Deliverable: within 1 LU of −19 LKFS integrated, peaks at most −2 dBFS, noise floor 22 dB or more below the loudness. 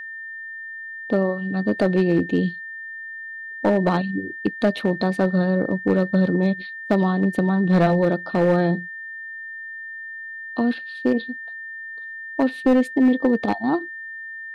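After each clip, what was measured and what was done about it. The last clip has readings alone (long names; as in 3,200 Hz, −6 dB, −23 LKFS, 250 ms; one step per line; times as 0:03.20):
share of clipped samples 0.7%; peaks flattened at −11.0 dBFS; interfering tone 1,800 Hz; level of the tone −32 dBFS; integrated loudness −21.5 LKFS; sample peak −11.0 dBFS; target loudness −19.0 LKFS
→ clipped peaks rebuilt −11 dBFS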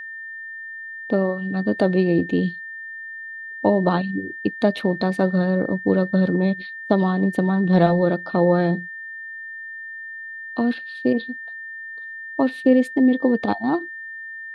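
share of clipped samples 0.0%; interfering tone 1,800 Hz; level of the tone −32 dBFS
→ notch filter 1,800 Hz, Q 30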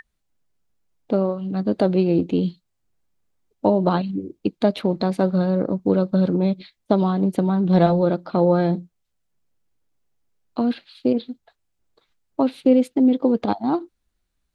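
interfering tone none found; integrated loudness −21.0 LKFS; sample peak −4.5 dBFS; target loudness −19.0 LKFS
→ level +2 dB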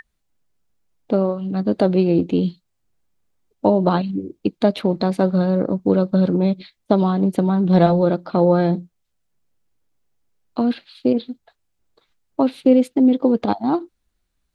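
integrated loudness −19.0 LKFS; sample peak −2.5 dBFS; background noise floor −72 dBFS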